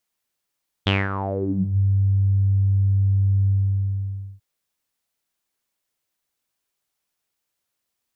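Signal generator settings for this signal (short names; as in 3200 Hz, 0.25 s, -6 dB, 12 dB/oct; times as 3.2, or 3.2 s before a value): synth note saw G2 12 dB/oct, low-pass 110 Hz, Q 8, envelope 5 oct, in 0.89 s, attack 12 ms, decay 0.21 s, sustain -10 dB, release 0.92 s, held 2.62 s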